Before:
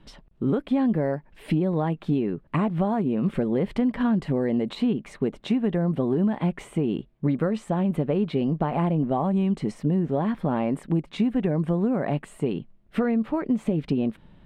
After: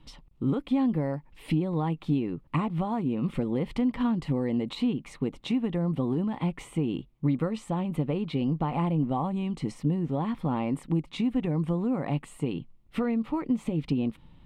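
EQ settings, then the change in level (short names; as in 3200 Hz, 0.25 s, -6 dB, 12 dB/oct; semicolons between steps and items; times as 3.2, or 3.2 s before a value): thirty-one-band EQ 200 Hz -8 dB, 400 Hz -9 dB, 630 Hz -11 dB, 1600 Hz -12 dB; 0.0 dB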